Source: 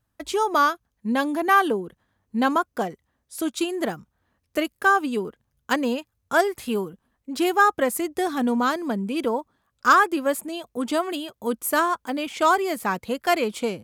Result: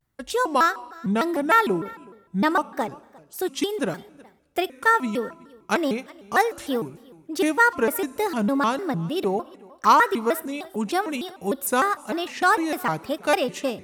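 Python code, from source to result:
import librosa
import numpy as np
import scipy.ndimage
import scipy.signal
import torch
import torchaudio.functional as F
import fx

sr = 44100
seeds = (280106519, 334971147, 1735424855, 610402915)

y = x + 10.0 ** (-23.5 / 20.0) * np.pad(x, (int(363 * sr / 1000.0), 0))[:len(x)]
y = fx.rev_schroeder(y, sr, rt60_s=1.3, comb_ms=27, drr_db=20.0)
y = fx.vibrato_shape(y, sr, shape='square', rate_hz=3.3, depth_cents=250.0)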